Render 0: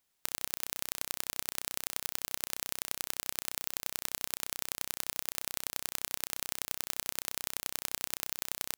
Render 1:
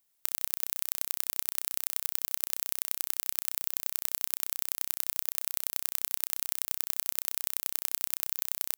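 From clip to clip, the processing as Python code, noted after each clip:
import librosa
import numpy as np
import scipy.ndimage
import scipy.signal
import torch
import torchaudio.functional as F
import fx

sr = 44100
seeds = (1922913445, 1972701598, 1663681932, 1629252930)

y = fx.high_shelf(x, sr, hz=8900.0, db=11.5)
y = y * librosa.db_to_amplitude(-3.5)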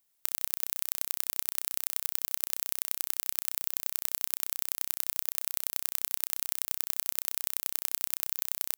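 y = x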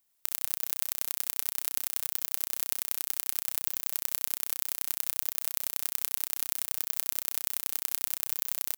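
y = x + 10.0 ** (-9.0 / 20.0) * np.pad(x, (int(70 * sr / 1000.0), 0))[:len(x)]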